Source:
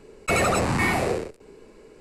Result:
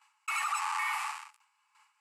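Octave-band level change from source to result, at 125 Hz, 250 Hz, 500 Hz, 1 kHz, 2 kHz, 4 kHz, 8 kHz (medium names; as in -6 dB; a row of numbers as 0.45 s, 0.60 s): under -40 dB, under -40 dB, under -40 dB, -6.0 dB, -8.5 dB, -8.5 dB, -8.5 dB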